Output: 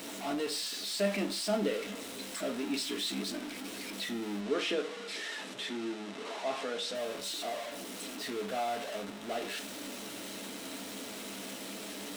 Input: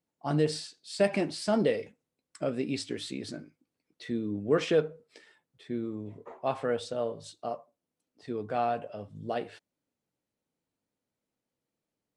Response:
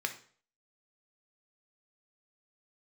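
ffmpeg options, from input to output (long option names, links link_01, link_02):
-filter_complex "[0:a]aeval=exprs='val(0)+0.5*0.0422*sgn(val(0))':channel_layout=same,asettb=1/sr,asplit=3[link_01][link_02][link_03];[link_01]atrim=end=4.404[link_04];[link_02]atrim=start=4.4:end=6.95,asetpts=PTS-STARTPTS,afade=type=in:duration=0.004:curve=qsin,afade=type=out:start_time=2.546:duration=0.004:curve=qsin,highpass=140,lowpass=7600[link_05];[link_03]atrim=start=6.946[link_06];[link_04][link_05]acrossfade=duration=0.004:curve1=hsin:curve2=qsin[link_07];[link_07][link_06]acrossfade=duration=0.004:curve1=qsin:curve2=hsin[link_08];[1:a]atrim=start_sample=2205,asetrate=70560,aresample=44100[link_09];[link_08][link_09]afir=irnorm=-1:irlink=0,volume=-4.5dB"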